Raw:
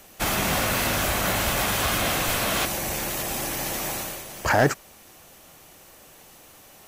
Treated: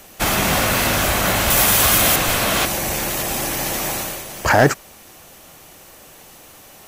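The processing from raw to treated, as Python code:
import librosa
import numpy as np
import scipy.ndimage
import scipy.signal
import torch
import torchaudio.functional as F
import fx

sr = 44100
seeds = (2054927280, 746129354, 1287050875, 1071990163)

y = fx.high_shelf(x, sr, hz=6400.0, db=10.0, at=(1.5, 2.16))
y = y * librosa.db_to_amplitude(6.0)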